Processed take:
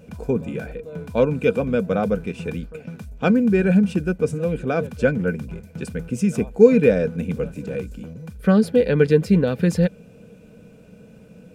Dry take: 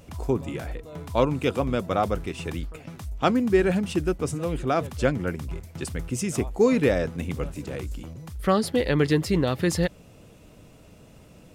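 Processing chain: small resonant body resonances 200/460/1500/2400 Hz, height 16 dB, ringing for 40 ms; gain -5.5 dB

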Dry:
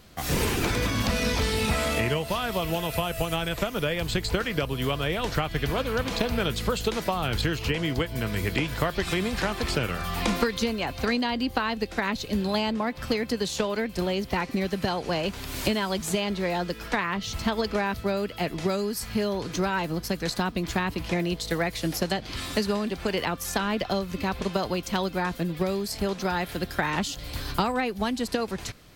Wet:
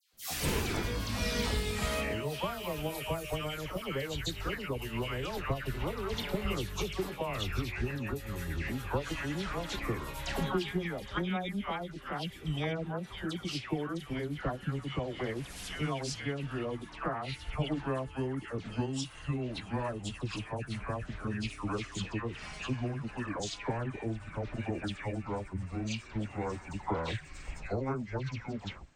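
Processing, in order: gliding pitch shift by -11.5 st starting unshifted; dispersion lows, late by 0.132 s, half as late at 1500 Hz; three-band expander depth 40%; gain -6.5 dB

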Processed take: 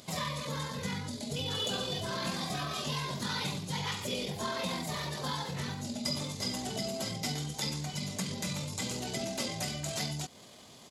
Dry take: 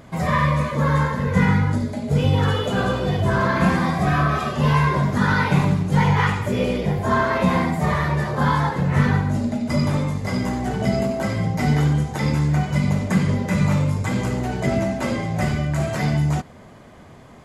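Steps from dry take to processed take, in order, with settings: tempo 1.6×; compressor 2.5:1, threshold -25 dBFS, peak gain reduction 8.5 dB; HPF 230 Hz 6 dB/oct; resonant high shelf 2600 Hz +13.5 dB, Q 1.5; gain -7.5 dB

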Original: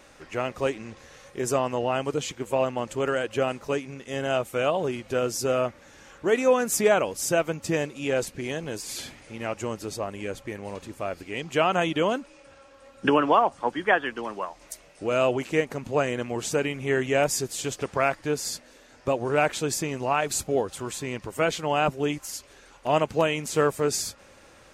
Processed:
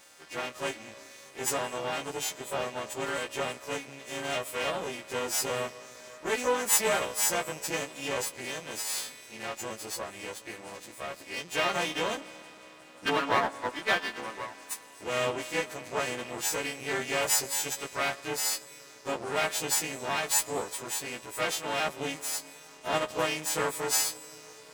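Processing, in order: frequency quantiser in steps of 2 st; reverb RT60 4.9 s, pre-delay 80 ms, DRR 16.5 dB; half-wave rectifier; HPF 210 Hz 6 dB/oct; gain -2 dB

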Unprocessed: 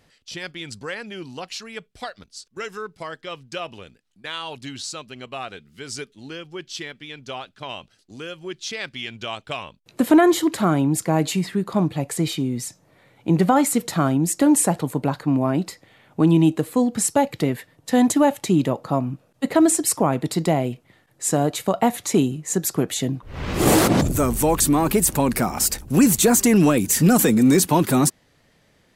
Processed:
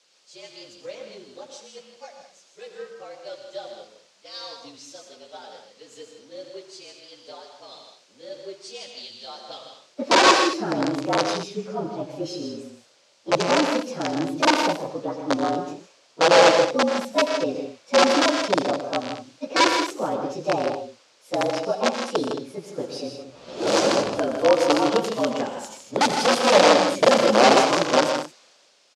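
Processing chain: inharmonic rescaling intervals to 112%; bell 1700 Hz -7 dB 1.4 oct; wrapped overs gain 12.5 dB; requantised 8-bit, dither triangular; speaker cabinet 330–6600 Hz, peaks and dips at 550 Hz +9 dB, 1900 Hz -3 dB, 4700 Hz +3 dB; tapped delay 84/121/158/172/221 ms -12.5/-9/-7/-16.5/-12 dB; three-band expander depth 40%

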